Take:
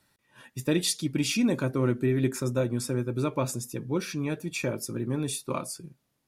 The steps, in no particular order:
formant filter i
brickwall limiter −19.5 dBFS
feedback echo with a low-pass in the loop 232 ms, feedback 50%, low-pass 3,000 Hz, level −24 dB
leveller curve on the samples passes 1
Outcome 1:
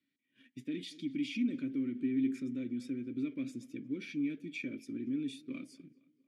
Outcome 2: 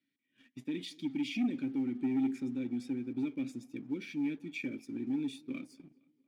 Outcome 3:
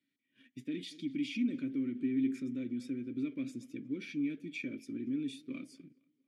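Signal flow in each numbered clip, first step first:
leveller curve on the samples, then feedback echo with a low-pass in the loop, then brickwall limiter, then formant filter
brickwall limiter, then formant filter, then leveller curve on the samples, then feedback echo with a low-pass in the loop
feedback echo with a low-pass in the loop, then leveller curve on the samples, then brickwall limiter, then formant filter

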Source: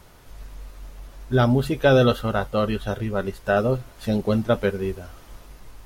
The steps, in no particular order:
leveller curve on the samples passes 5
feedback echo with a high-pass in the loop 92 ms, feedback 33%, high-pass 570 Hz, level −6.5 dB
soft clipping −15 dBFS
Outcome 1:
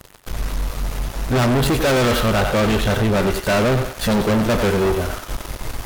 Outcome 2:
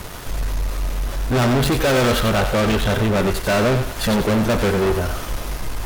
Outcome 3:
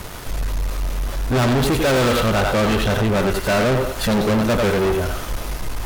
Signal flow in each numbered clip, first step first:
leveller curve on the samples, then feedback echo with a high-pass in the loop, then soft clipping
soft clipping, then leveller curve on the samples, then feedback echo with a high-pass in the loop
feedback echo with a high-pass in the loop, then soft clipping, then leveller curve on the samples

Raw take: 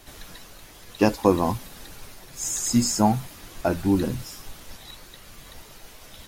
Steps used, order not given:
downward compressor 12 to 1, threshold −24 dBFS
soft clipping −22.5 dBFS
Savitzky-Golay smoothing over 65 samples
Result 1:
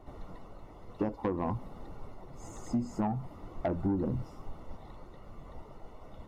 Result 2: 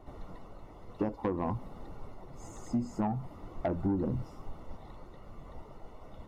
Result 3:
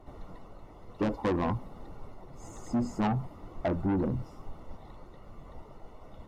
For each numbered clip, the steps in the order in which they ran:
Savitzky-Golay smoothing, then downward compressor, then soft clipping
downward compressor, then Savitzky-Golay smoothing, then soft clipping
Savitzky-Golay smoothing, then soft clipping, then downward compressor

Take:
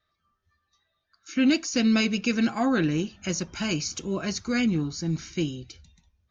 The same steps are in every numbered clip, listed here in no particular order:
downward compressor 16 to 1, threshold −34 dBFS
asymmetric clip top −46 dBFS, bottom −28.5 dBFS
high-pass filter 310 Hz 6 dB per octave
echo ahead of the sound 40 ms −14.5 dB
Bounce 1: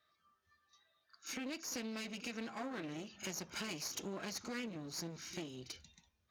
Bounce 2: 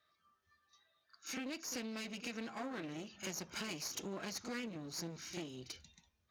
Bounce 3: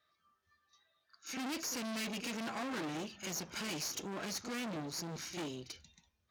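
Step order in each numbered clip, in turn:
downward compressor, then echo ahead of the sound, then asymmetric clip, then high-pass filter
echo ahead of the sound, then downward compressor, then asymmetric clip, then high-pass filter
echo ahead of the sound, then asymmetric clip, then downward compressor, then high-pass filter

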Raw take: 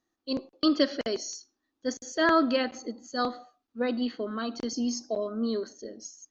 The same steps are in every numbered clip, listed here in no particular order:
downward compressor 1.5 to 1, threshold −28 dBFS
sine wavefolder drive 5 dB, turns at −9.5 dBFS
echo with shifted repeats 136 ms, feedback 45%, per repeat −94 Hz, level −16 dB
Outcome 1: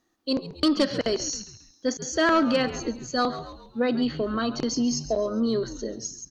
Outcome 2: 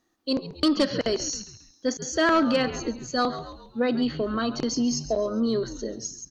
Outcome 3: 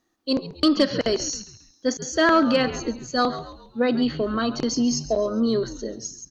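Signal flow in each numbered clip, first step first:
sine wavefolder, then echo with shifted repeats, then downward compressor
echo with shifted repeats, then sine wavefolder, then downward compressor
echo with shifted repeats, then downward compressor, then sine wavefolder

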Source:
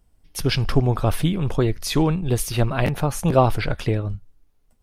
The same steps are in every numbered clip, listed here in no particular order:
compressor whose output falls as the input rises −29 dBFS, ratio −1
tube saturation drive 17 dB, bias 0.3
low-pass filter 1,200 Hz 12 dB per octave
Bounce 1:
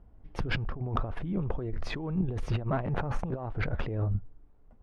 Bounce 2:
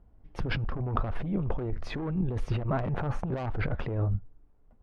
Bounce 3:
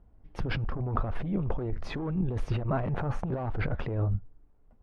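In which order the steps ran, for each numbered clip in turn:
low-pass filter, then compressor whose output falls as the input rises, then tube saturation
low-pass filter, then tube saturation, then compressor whose output falls as the input rises
tube saturation, then low-pass filter, then compressor whose output falls as the input rises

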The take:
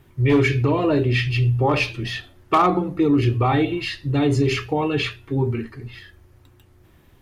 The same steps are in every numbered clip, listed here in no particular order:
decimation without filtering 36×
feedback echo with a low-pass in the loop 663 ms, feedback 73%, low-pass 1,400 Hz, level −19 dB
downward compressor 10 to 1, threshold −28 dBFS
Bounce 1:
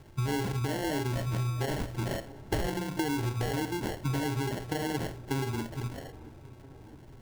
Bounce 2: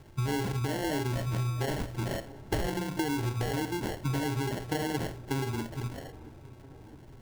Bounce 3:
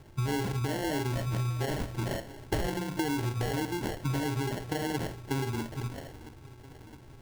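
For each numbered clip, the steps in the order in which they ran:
downward compressor, then decimation without filtering, then feedback echo with a low-pass in the loop
decimation without filtering, then downward compressor, then feedback echo with a low-pass in the loop
downward compressor, then feedback echo with a low-pass in the loop, then decimation without filtering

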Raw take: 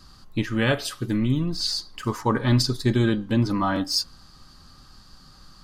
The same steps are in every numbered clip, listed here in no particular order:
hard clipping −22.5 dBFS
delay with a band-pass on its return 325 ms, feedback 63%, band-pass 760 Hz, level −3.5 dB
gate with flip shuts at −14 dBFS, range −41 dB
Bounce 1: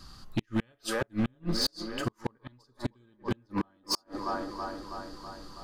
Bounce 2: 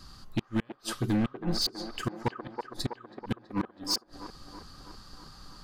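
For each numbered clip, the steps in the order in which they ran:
delay with a band-pass on its return, then gate with flip, then hard clipping
gate with flip, then hard clipping, then delay with a band-pass on its return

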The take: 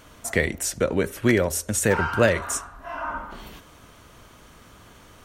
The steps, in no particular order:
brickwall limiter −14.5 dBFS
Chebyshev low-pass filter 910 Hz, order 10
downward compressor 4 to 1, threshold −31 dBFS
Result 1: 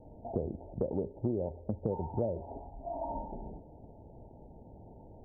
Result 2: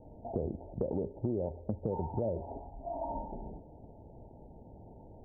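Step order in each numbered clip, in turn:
Chebyshev low-pass filter, then downward compressor, then brickwall limiter
Chebyshev low-pass filter, then brickwall limiter, then downward compressor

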